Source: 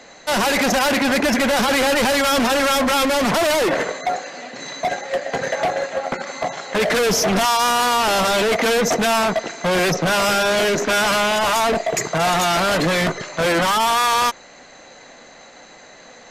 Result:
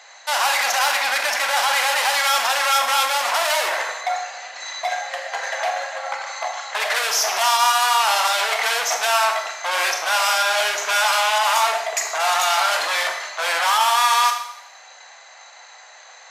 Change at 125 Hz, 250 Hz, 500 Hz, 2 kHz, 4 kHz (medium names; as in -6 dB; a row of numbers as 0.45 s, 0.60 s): under -40 dB, under -30 dB, -8.5 dB, +0.5 dB, +1.0 dB